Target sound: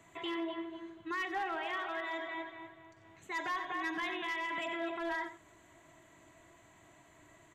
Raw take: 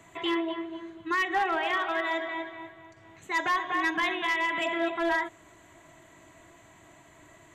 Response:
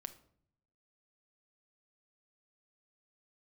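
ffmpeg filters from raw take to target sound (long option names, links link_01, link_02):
-filter_complex "[0:a]alimiter=limit=-24dB:level=0:latency=1:release=15,asplit=2[link_01][link_02];[link_02]aecho=0:1:93:0.237[link_03];[link_01][link_03]amix=inputs=2:normalize=0,volume=-6.5dB"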